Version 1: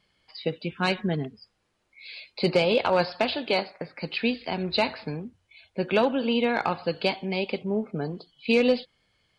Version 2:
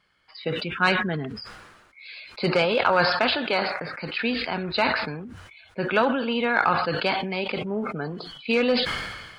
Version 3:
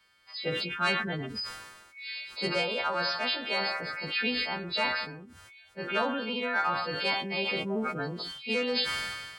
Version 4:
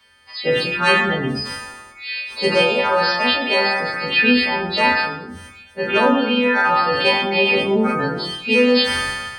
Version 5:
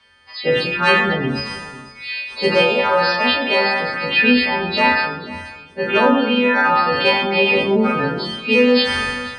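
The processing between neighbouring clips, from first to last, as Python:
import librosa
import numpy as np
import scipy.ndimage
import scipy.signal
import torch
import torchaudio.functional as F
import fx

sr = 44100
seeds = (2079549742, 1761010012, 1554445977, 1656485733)

y1 = fx.peak_eq(x, sr, hz=1400.0, db=12.0, octaves=1.0)
y1 = fx.sustainer(y1, sr, db_per_s=42.0)
y1 = y1 * 10.0 ** (-2.5 / 20.0)
y2 = fx.freq_snap(y1, sr, grid_st=2)
y2 = fx.rider(y2, sr, range_db=5, speed_s=0.5)
y2 = y2 * 10.0 ** (-7.5 / 20.0)
y3 = fx.rev_fdn(y2, sr, rt60_s=0.75, lf_ratio=1.05, hf_ratio=0.75, size_ms=73.0, drr_db=-1.5)
y3 = y3 * 10.0 ** (9.0 / 20.0)
y4 = fx.air_absorb(y3, sr, metres=65.0)
y4 = y4 + 10.0 ** (-17.5 / 20.0) * np.pad(y4, (int(489 * sr / 1000.0), 0))[:len(y4)]
y4 = y4 * 10.0 ** (1.5 / 20.0)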